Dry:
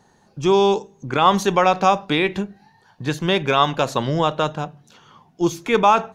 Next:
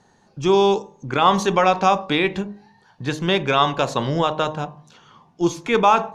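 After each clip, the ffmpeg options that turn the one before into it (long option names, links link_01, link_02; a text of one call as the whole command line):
ffmpeg -i in.wav -af "lowpass=9100,bandreject=frequency=51.39:width_type=h:width=4,bandreject=frequency=102.78:width_type=h:width=4,bandreject=frequency=154.17:width_type=h:width=4,bandreject=frequency=205.56:width_type=h:width=4,bandreject=frequency=256.95:width_type=h:width=4,bandreject=frequency=308.34:width_type=h:width=4,bandreject=frequency=359.73:width_type=h:width=4,bandreject=frequency=411.12:width_type=h:width=4,bandreject=frequency=462.51:width_type=h:width=4,bandreject=frequency=513.9:width_type=h:width=4,bandreject=frequency=565.29:width_type=h:width=4,bandreject=frequency=616.68:width_type=h:width=4,bandreject=frequency=668.07:width_type=h:width=4,bandreject=frequency=719.46:width_type=h:width=4,bandreject=frequency=770.85:width_type=h:width=4,bandreject=frequency=822.24:width_type=h:width=4,bandreject=frequency=873.63:width_type=h:width=4,bandreject=frequency=925.02:width_type=h:width=4,bandreject=frequency=976.41:width_type=h:width=4,bandreject=frequency=1027.8:width_type=h:width=4,bandreject=frequency=1079.19:width_type=h:width=4,bandreject=frequency=1130.58:width_type=h:width=4,bandreject=frequency=1181.97:width_type=h:width=4" out.wav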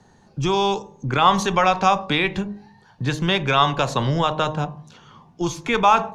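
ffmpeg -i in.wav -filter_complex "[0:a]acrossover=split=130|670|3800[link_01][link_02][link_03][link_04];[link_02]acompressor=threshold=-28dB:ratio=6[link_05];[link_01][link_05][link_03][link_04]amix=inputs=4:normalize=0,lowshelf=frequency=210:gain=8,volume=1dB" out.wav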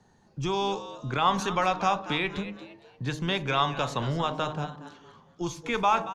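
ffmpeg -i in.wav -filter_complex "[0:a]asplit=4[link_01][link_02][link_03][link_04];[link_02]adelay=231,afreqshift=130,volume=-13.5dB[link_05];[link_03]adelay=462,afreqshift=260,volume=-23.4dB[link_06];[link_04]adelay=693,afreqshift=390,volume=-33.3dB[link_07];[link_01][link_05][link_06][link_07]amix=inputs=4:normalize=0,volume=-8dB" out.wav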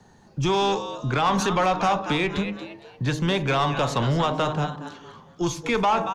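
ffmpeg -i in.wav -filter_complex "[0:a]acrossover=split=560|840[link_01][link_02][link_03];[link_03]alimiter=limit=-23dB:level=0:latency=1:release=129[link_04];[link_01][link_02][link_04]amix=inputs=3:normalize=0,asoftclip=type=tanh:threshold=-22.5dB,volume=8dB" out.wav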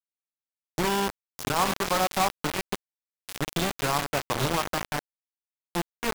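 ffmpeg -i in.wav -filter_complex "[0:a]aeval=exprs='0.188*(cos(1*acos(clip(val(0)/0.188,-1,1)))-cos(1*PI/2))+0.0473*(cos(3*acos(clip(val(0)/0.188,-1,1)))-cos(3*PI/2))':channel_layout=same,acrossover=split=2200[link_01][link_02];[link_01]adelay=340[link_03];[link_03][link_02]amix=inputs=2:normalize=0,acrusher=bits=3:mix=0:aa=0.000001,volume=-1.5dB" out.wav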